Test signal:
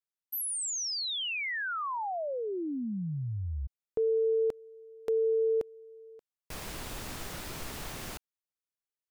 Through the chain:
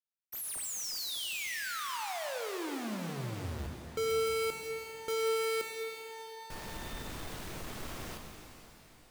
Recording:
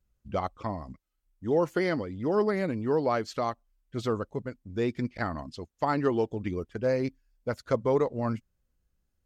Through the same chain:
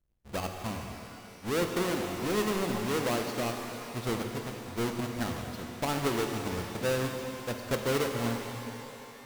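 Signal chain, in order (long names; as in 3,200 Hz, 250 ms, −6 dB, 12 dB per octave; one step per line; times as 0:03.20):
each half-wave held at its own peak
mains-hum notches 50/100/150 Hz
reverb with rising layers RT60 3.1 s, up +12 semitones, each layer −8 dB, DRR 3.5 dB
level −8.5 dB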